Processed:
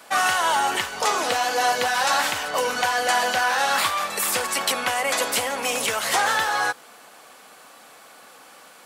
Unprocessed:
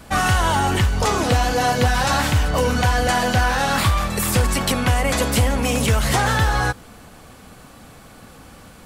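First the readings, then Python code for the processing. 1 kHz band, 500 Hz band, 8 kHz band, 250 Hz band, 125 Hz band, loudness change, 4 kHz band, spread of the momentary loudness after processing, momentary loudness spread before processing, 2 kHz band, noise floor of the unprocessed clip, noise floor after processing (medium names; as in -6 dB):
-1.0 dB, -4.0 dB, 0.0 dB, -14.5 dB, -28.0 dB, -3.0 dB, 0.0 dB, 4 LU, 2 LU, 0.0 dB, -44 dBFS, -48 dBFS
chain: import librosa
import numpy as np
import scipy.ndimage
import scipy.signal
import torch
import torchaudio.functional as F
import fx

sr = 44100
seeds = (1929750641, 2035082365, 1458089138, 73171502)

y = scipy.signal.sosfilt(scipy.signal.butter(2, 570.0, 'highpass', fs=sr, output='sos'), x)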